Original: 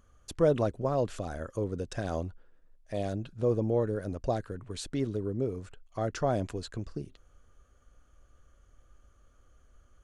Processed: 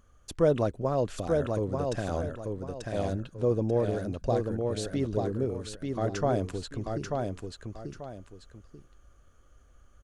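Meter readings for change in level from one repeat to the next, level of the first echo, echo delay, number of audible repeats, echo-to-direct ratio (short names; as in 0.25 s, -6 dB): -10.5 dB, -4.0 dB, 0.888 s, 2, -3.5 dB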